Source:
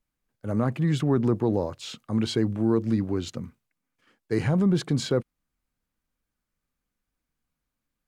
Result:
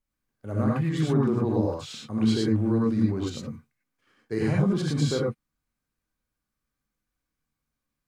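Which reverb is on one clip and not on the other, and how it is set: gated-style reverb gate 130 ms rising, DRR -3 dB; trim -5 dB

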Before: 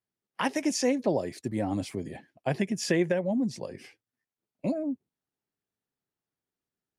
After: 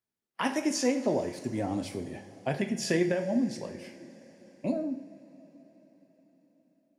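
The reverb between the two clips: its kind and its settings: two-slope reverb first 0.54 s, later 5 s, from -18 dB, DRR 5 dB; trim -2 dB

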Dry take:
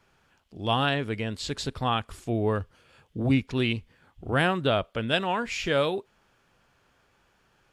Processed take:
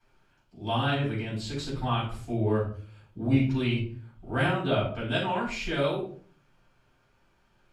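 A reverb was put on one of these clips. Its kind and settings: simulated room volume 370 m³, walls furnished, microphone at 7.8 m; trim -14.5 dB

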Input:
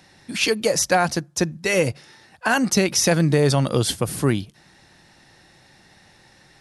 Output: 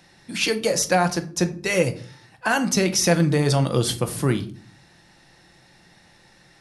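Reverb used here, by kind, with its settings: simulated room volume 390 m³, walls furnished, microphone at 0.78 m; trim -2 dB

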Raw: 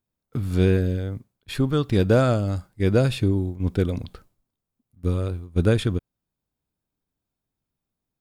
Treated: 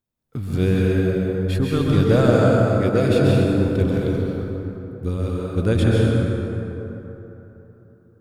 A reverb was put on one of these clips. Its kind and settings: plate-style reverb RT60 3.5 s, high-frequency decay 0.45×, pre-delay 115 ms, DRR -4.5 dB; trim -1.5 dB

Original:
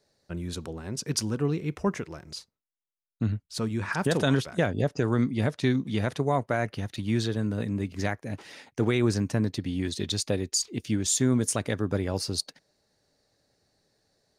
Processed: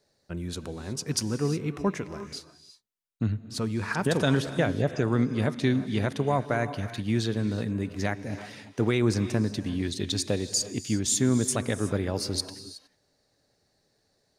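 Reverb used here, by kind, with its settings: gated-style reverb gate 390 ms rising, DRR 11.5 dB

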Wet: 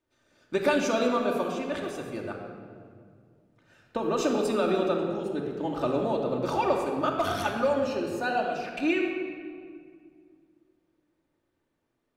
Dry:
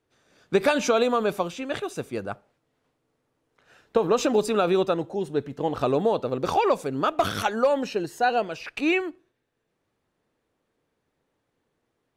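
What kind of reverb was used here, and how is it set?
simulated room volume 3700 m³, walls mixed, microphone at 2.6 m; trim -7 dB

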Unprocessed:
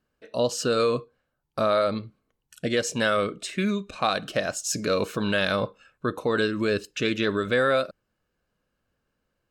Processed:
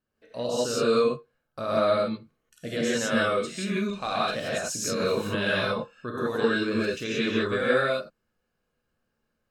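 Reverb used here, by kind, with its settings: gated-style reverb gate 200 ms rising, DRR -7.5 dB; trim -9 dB

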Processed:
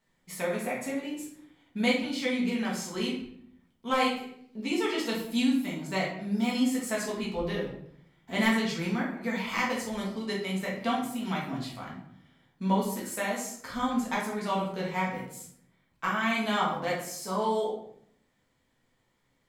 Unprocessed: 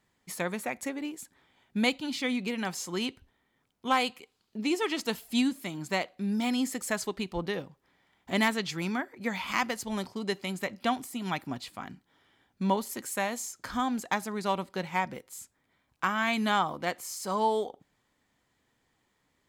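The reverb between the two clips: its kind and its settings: simulated room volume 130 m³, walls mixed, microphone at 1.6 m; trim -6 dB

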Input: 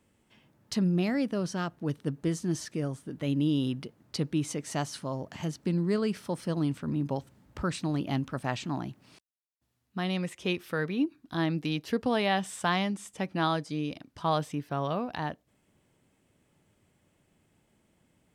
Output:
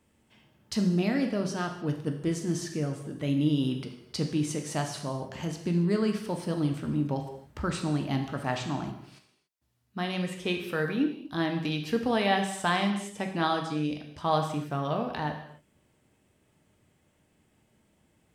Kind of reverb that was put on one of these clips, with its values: gated-style reverb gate 310 ms falling, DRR 3.5 dB

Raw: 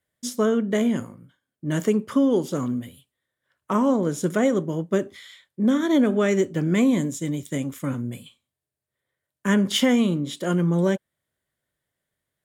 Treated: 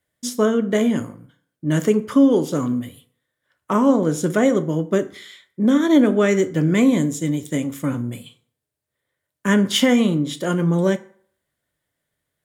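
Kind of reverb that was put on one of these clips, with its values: FDN reverb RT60 0.58 s, low-frequency decay 0.85×, high-frequency decay 0.6×, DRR 11 dB; trim +3.5 dB

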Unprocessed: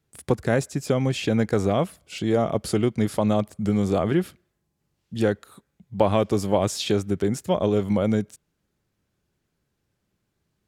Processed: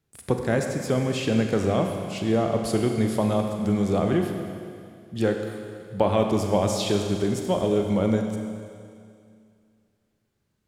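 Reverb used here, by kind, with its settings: Schroeder reverb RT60 2.3 s, combs from 32 ms, DRR 3.5 dB; trim -2 dB

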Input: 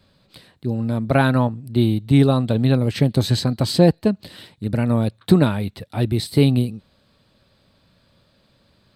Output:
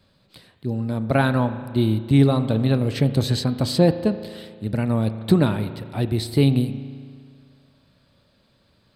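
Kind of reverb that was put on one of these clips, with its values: spring tank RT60 2 s, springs 36 ms, chirp 70 ms, DRR 11 dB; trim -2.5 dB

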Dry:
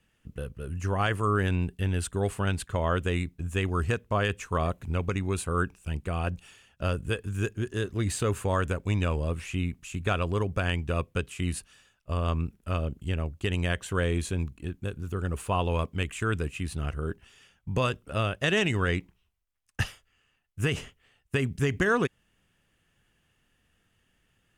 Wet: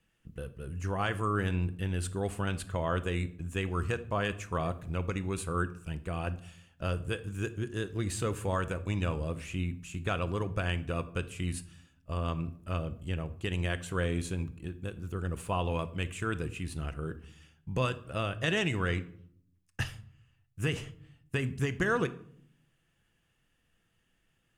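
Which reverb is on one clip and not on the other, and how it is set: simulated room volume 1000 m³, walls furnished, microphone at 0.71 m; trim -4.5 dB

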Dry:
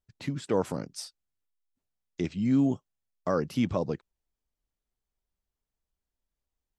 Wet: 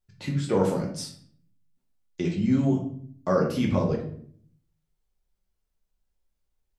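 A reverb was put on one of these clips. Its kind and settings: simulated room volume 74 m³, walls mixed, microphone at 0.96 m

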